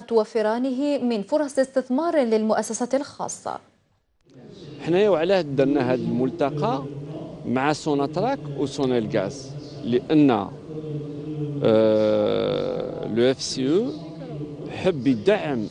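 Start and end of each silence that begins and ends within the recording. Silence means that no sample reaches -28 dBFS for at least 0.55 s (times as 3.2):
3.56–4.82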